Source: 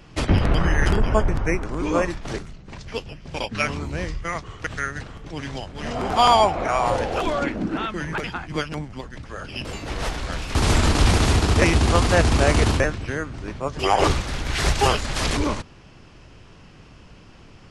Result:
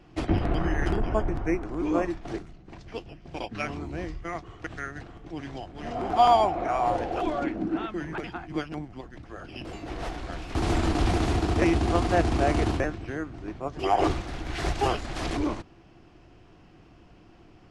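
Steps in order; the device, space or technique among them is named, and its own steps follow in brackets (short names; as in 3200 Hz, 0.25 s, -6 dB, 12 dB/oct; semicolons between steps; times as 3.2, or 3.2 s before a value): inside a helmet (high shelf 4400 Hz -8 dB; small resonant body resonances 330/710 Hz, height 10 dB, ringing for 45 ms); gain -8 dB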